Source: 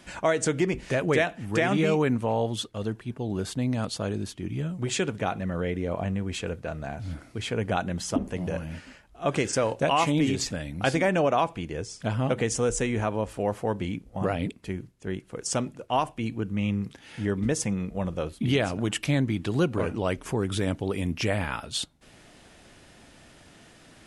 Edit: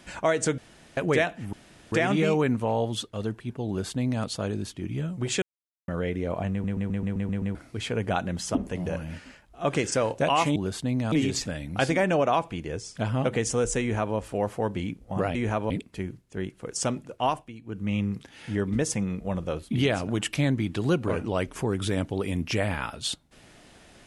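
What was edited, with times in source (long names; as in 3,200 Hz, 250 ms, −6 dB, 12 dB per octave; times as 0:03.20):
0:00.58–0:00.97: fill with room tone
0:01.53: splice in room tone 0.39 s
0:03.29–0:03.85: duplicate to 0:10.17
0:05.03–0:05.49: silence
0:06.12: stutter in place 0.13 s, 8 plays
0:12.86–0:13.21: duplicate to 0:14.40
0:15.91–0:16.65: duck −14 dB, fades 0.32 s equal-power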